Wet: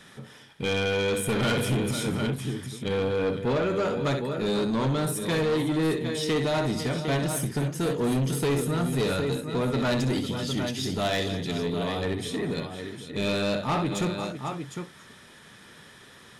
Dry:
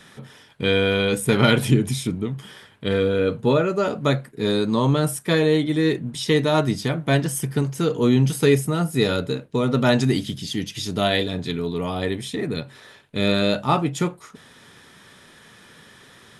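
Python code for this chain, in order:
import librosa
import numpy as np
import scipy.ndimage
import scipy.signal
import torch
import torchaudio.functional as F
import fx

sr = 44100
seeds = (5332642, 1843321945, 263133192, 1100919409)

y = fx.echo_multitap(x, sr, ms=(63, 234, 501, 756), db=(-9.5, -18.5, -14.5, -10.0))
y = 10.0 ** (-18.5 / 20.0) * np.tanh(y / 10.0 ** (-18.5 / 20.0))
y = F.gain(torch.from_numpy(y), -2.5).numpy()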